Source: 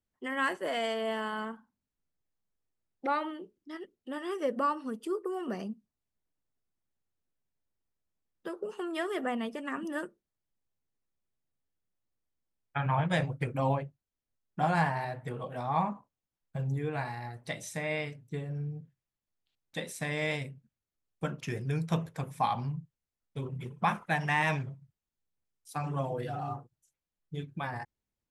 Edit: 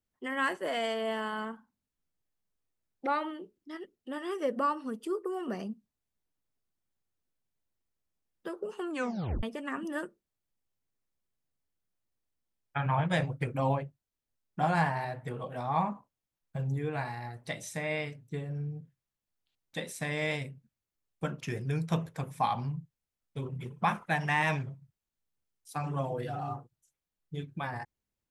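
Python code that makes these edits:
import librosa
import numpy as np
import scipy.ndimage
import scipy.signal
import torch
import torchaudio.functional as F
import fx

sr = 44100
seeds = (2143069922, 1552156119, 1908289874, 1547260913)

y = fx.edit(x, sr, fx.tape_stop(start_s=8.9, length_s=0.53), tone=tone)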